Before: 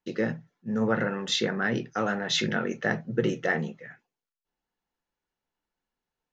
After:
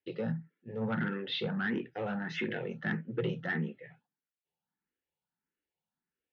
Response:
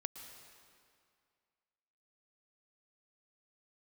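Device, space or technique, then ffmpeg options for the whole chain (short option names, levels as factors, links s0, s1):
barber-pole phaser into a guitar amplifier: -filter_complex "[0:a]asplit=2[s0][s1];[s1]afreqshift=1.6[s2];[s0][s2]amix=inputs=2:normalize=1,asoftclip=type=tanh:threshold=0.0708,highpass=81,equalizer=f=160:t=q:w=4:g=5,equalizer=f=650:t=q:w=4:g=-6,equalizer=f=1100:t=q:w=4:g=-7,lowpass=f=3500:w=0.5412,lowpass=f=3500:w=1.3066,volume=0.841"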